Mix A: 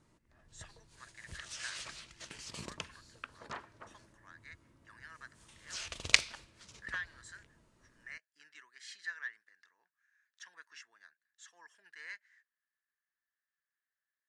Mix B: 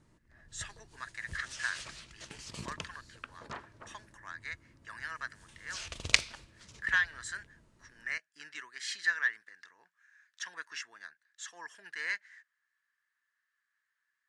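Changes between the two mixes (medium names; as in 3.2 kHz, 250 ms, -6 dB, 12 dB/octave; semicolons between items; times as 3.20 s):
speech +11.5 dB; master: add bass shelf 270 Hz +5.5 dB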